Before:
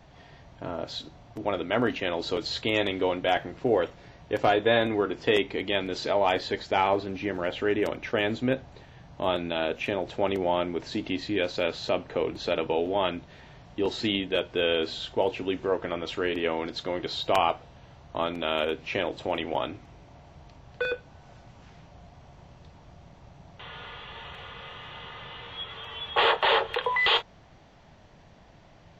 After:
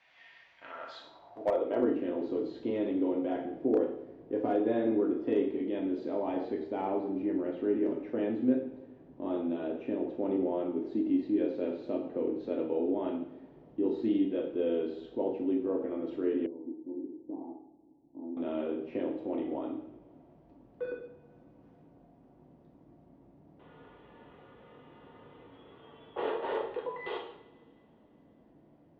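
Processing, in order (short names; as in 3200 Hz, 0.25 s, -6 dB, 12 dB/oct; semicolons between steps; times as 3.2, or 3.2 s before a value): reverb, pre-delay 3 ms, DRR -1 dB; band-pass sweep 2300 Hz -> 290 Hz, 0.59–1.97; 16.46–18.37 vocal tract filter u; slew limiter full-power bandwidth 53 Hz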